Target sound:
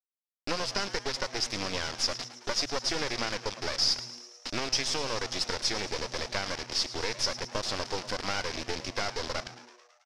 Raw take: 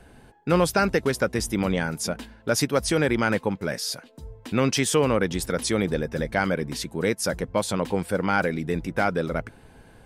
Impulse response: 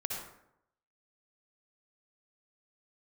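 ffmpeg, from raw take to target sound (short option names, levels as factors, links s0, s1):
-filter_complex "[0:a]highpass=340,bandreject=f=870:w=15,acompressor=threshold=0.0355:ratio=5,flanger=delay=0.9:depth=4.8:regen=-57:speed=0.61:shape=triangular,acrusher=bits=4:dc=4:mix=0:aa=0.000001,lowpass=f=5200:t=q:w=4.8,asplit=8[s0][s1][s2][s3][s4][s5][s6][s7];[s1]adelay=109,afreqshift=120,volume=0.188[s8];[s2]adelay=218,afreqshift=240,volume=0.116[s9];[s3]adelay=327,afreqshift=360,volume=0.0724[s10];[s4]adelay=436,afreqshift=480,volume=0.0447[s11];[s5]adelay=545,afreqshift=600,volume=0.0279[s12];[s6]adelay=654,afreqshift=720,volume=0.0172[s13];[s7]adelay=763,afreqshift=840,volume=0.0107[s14];[s0][s8][s9][s10][s11][s12][s13][s14]amix=inputs=8:normalize=0,volume=2"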